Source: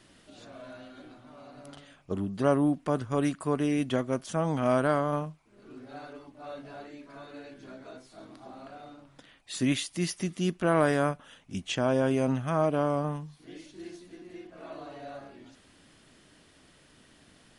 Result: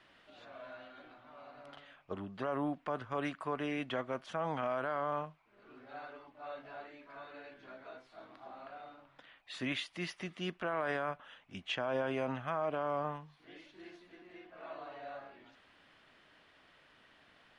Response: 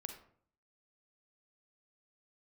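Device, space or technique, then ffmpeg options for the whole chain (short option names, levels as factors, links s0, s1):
DJ mixer with the lows and highs turned down: -filter_complex "[0:a]acrossover=split=570 3600:gain=0.224 1 0.0708[s0][s1][s2];[s0][s1][s2]amix=inputs=3:normalize=0,alimiter=level_in=1.06:limit=0.0631:level=0:latency=1:release=33,volume=0.944"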